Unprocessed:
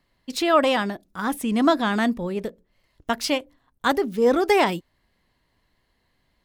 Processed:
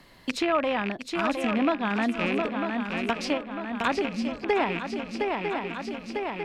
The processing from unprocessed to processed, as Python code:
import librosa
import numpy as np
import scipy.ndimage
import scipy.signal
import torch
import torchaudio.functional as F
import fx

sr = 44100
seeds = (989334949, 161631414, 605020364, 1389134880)

y = fx.rattle_buzz(x, sr, strikes_db=-36.0, level_db=-14.0)
y = fx.env_lowpass_down(y, sr, base_hz=2400.0, full_db=-17.5)
y = fx.spec_erase(y, sr, start_s=4.09, length_s=0.35, low_hz=250.0, high_hz=4000.0)
y = fx.echo_swing(y, sr, ms=949, ratio=3, feedback_pct=46, wet_db=-8.5)
y = fx.band_squash(y, sr, depth_pct=70)
y = y * librosa.db_to_amplitude(-4.5)